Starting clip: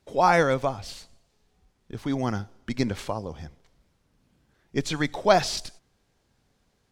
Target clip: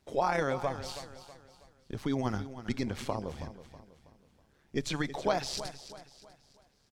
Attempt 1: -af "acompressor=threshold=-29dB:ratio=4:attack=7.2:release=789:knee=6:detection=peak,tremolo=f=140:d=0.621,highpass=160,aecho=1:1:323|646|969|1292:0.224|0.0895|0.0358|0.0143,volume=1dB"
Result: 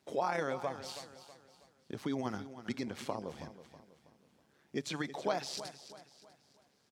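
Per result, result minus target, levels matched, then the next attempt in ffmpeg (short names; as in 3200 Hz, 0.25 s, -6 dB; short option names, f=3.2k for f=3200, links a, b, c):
compressor: peak gain reduction +4.5 dB; 125 Hz band -4.0 dB
-af "acompressor=threshold=-23dB:ratio=4:attack=7.2:release=789:knee=6:detection=peak,tremolo=f=140:d=0.621,highpass=160,aecho=1:1:323|646|969|1292:0.224|0.0895|0.0358|0.0143,volume=1dB"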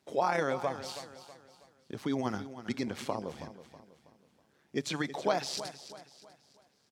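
125 Hz band -5.0 dB
-af "acompressor=threshold=-23dB:ratio=4:attack=7.2:release=789:knee=6:detection=peak,tremolo=f=140:d=0.621,aecho=1:1:323|646|969|1292:0.224|0.0895|0.0358|0.0143,volume=1dB"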